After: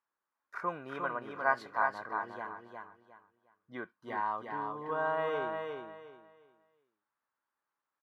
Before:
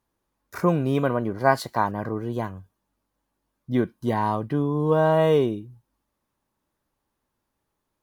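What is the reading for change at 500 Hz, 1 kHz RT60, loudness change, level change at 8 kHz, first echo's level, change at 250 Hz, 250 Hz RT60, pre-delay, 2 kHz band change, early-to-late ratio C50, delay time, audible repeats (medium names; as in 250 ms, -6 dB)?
-14.0 dB, no reverb, -12.0 dB, no reading, -4.5 dB, -21.5 dB, no reverb, no reverb, -3.0 dB, no reverb, 357 ms, 3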